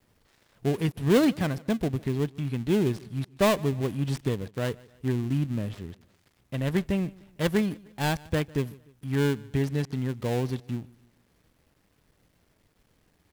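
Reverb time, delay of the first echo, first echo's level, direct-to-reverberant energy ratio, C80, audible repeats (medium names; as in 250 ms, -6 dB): no reverb, 151 ms, -23.5 dB, no reverb, no reverb, 2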